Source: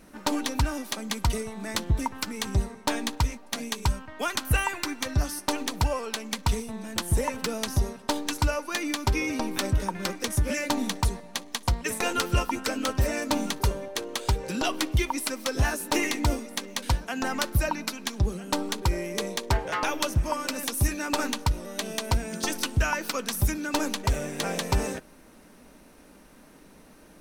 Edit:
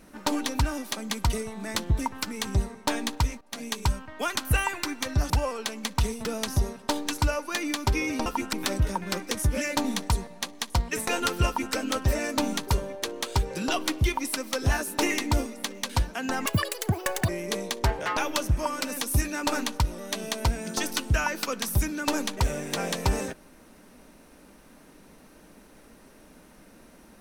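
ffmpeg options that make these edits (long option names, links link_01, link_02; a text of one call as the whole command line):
ffmpeg -i in.wav -filter_complex "[0:a]asplit=8[link_01][link_02][link_03][link_04][link_05][link_06][link_07][link_08];[link_01]atrim=end=3.41,asetpts=PTS-STARTPTS,afade=type=out:start_time=3.406:duration=0.004:curve=hsin:silence=0.177828[link_09];[link_02]atrim=start=3.41:end=5.302,asetpts=PTS-STARTPTS,afade=type=in:duration=0.3:silence=0.177828[link_10];[link_03]atrim=start=5.778:end=6.732[link_11];[link_04]atrim=start=7.448:end=9.462[link_12];[link_05]atrim=start=12.398:end=12.672[link_13];[link_06]atrim=start=9.458:end=17.394[link_14];[link_07]atrim=start=17.39:end=18.95,asetpts=PTS-STARTPTS,asetrate=83349,aresample=44100[link_15];[link_08]atrim=start=18.946[link_16];[link_09][link_10]concat=n=2:v=0:a=1[link_17];[link_17][link_11]acrossfade=duration=0.004:curve1=hsin:curve2=hsin[link_18];[link_18][link_12]acrossfade=duration=0.004:curve1=hsin:curve2=hsin[link_19];[link_19][link_13]acrossfade=duration=0.004:curve1=hsin:curve2=hsin[link_20];[link_20][link_14]acrossfade=duration=0.004:curve1=hsin:curve2=hsin[link_21];[link_21][link_15]acrossfade=duration=0.004:curve1=hsin:curve2=hsin[link_22];[link_22][link_16]acrossfade=duration=0.004:curve1=hsin:curve2=hsin" out.wav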